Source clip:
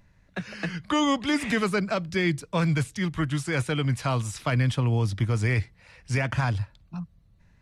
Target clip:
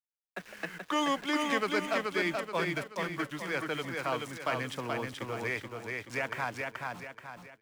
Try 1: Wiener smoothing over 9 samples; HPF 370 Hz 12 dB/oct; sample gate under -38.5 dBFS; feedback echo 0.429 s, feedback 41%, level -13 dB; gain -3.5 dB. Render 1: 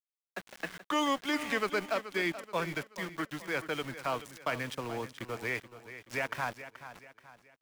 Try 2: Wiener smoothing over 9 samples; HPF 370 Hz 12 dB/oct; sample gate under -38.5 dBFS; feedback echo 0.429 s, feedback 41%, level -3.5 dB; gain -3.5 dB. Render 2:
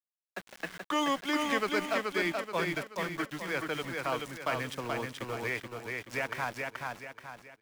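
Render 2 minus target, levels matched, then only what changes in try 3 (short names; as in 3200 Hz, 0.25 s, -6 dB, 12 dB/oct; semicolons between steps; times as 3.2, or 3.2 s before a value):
sample gate: distortion +7 dB
change: sample gate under -45 dBFS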